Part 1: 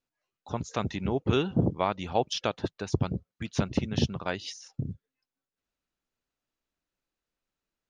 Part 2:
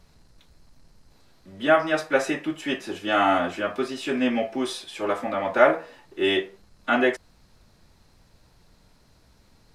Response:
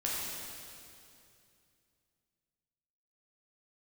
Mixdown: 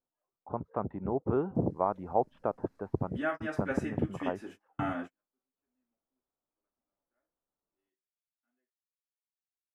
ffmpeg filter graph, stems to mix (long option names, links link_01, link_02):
-filter_complex "[0:a]lowpass=frequency=1100:width=0.5412,lowpass=frequency=1100:width=1.3066,lowshelf=frequency=240:gain=-9.5,volume=0.5dB,asplit=2[link_01][link_02];[1:a]equalizer=frequency=250:width_type=o:width=0.67:gain=10,equalizer=frequency=1600:width_type=o:width=0.67:gain=5,equalizer=frequency=4000:width_type=o:width=0.67:gain=-8,adelay=1550,volume=-16dB[link_03];[link_02]apad=whole_len=498069[link_04];[link_03][link_04]sidechaingate=range=-55dB:threshold=-59dB:ratio=16:detection=peak[link_05];[link_01][link_05]amix=inputs=2:normalize=0"